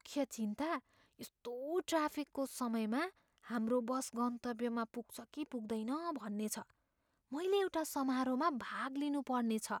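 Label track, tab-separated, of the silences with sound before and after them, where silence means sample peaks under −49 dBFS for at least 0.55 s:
6.620000	7.320000	silence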